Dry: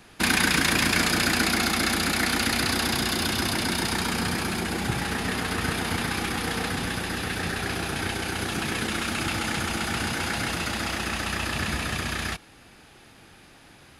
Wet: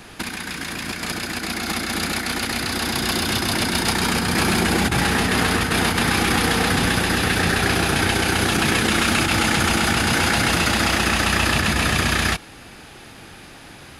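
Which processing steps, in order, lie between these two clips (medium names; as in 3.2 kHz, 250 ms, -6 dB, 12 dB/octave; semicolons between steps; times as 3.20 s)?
compressor with a negative ratio -28 dBFS, ratio -0.5; trim +8 dB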